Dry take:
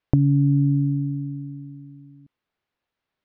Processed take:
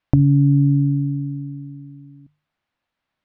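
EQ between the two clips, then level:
high-frequency loss of the air 62 metres
parametric band 420 Hz −10 dB 0.37 octaves
mains-hum notches 50/100/150 Hz
+4.5 dB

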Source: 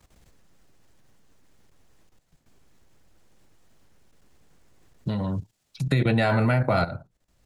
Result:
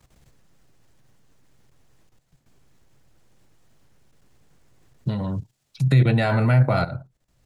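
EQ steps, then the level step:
parametric band 130 Hz +8.5 dB 0.31 octaves
0.0 dB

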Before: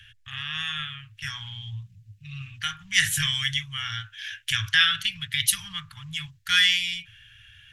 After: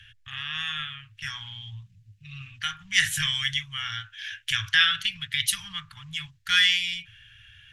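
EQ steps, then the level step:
dynamic equaliser 110 Hz, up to −5 dB, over −50 dBFS, Q 0.85
high-shelf EQ 9,800 Hz −8.5 dB
0.0 dB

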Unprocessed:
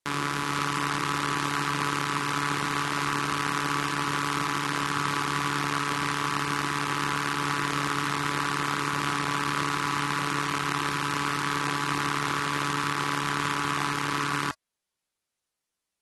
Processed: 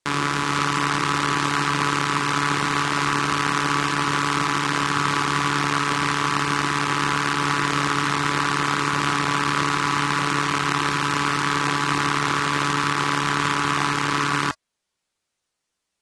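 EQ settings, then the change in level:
low-pass filter 9,500 Hz 24 dB per octave
+6.0 dB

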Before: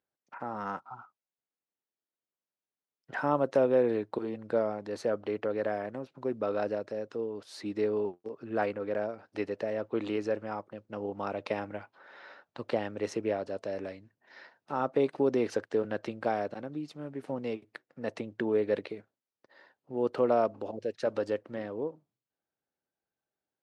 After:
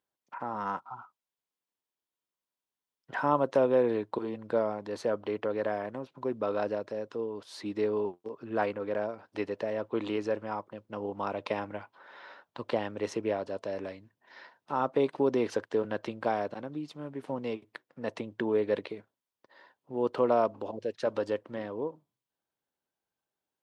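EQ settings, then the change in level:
parametric band 1,000 Hz +7.5 dB 0.26 octaves
parametric band 3,300 Hz +4 dB 0.39 octaves
0.0 dB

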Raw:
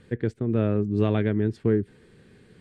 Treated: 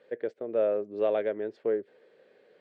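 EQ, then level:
high-pass with resonance 560 Hz, resonance Q 4.9
high-frequency loss of the air 150 metres
parametric band 1,100 Hz −2.5 dB
−5.0 dB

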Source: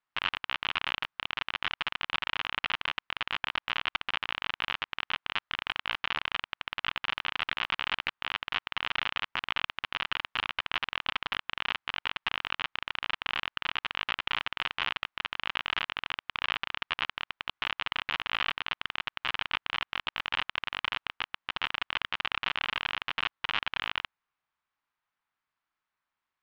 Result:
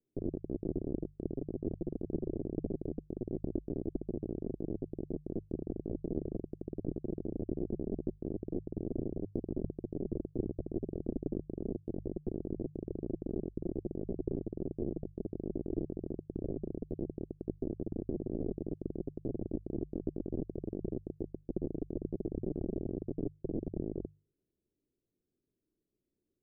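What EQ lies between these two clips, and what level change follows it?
Butterworth low-pass 690 Hz 72 dB per octave
low shelf with overshoot 520 Hz +11.5 dB, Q 3
mains-hum notches 50/100/150 Hz
+1.5 dB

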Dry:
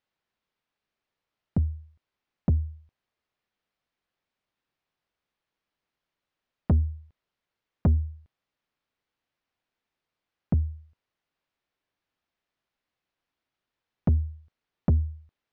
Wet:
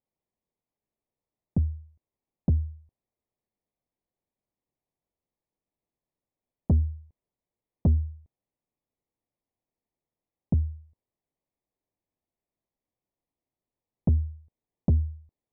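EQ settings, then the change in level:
moving average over 30 samples
0.0 dB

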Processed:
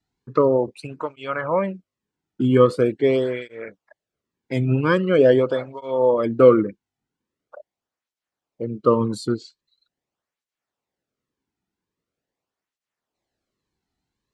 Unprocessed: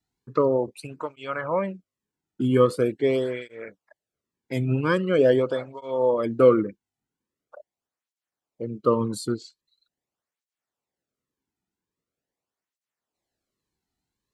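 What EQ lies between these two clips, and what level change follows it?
high-frequency loss of the air 61 metres
+4.0 dB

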